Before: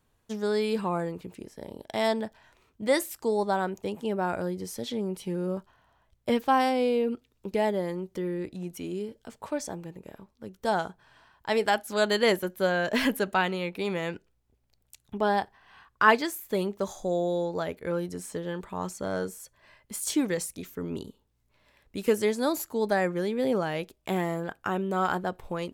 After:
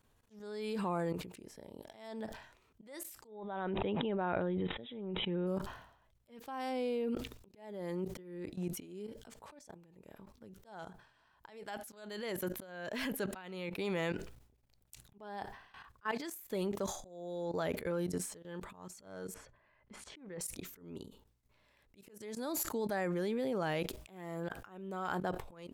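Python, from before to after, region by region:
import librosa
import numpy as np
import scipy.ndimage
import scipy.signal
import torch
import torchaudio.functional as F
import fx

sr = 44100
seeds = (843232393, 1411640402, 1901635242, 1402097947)

y = fx.chain(x, sr, fx.brickwall_lowpass(high_hz=3900.0),
    fx.sustainer(db_per_s=27.0), at=(3.27, 5.47))
y = fx.chain(y, sr, fx.lowpass(hz=2000.0, slope=12),
    fx.sustainer(db_per_s=120.0), at=(19.34, 20.41))
y = fx.level_steps(y, sr, step_db=18)
y = fx.auto_swell(y, sr, attack_ms=569.0)
y = fx.sustainer(y, sr, db_per_s=86.0)
y = y * 10.0 ** (1.5 / 20.0)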